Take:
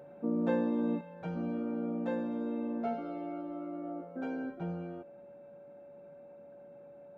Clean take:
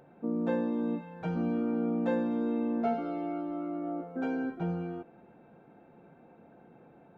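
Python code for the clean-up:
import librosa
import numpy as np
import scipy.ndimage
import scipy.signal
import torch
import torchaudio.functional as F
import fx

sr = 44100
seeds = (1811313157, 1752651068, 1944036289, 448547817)

y = fx.notch(x, sr, hz=570.0, q=30.0)
y = fx.gain(y, sr, db=fx.steps((0.0, 0.0), (1.01, 5.0)))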